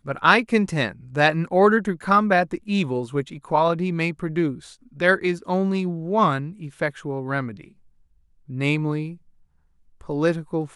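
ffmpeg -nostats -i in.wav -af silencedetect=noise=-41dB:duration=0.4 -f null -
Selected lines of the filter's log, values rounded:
silence_start: 7.68
silence_end: 8.49 | silence_duration: 0.80
silence_start: 9.16
silence_end: 10.01 | silence_duration: 0.85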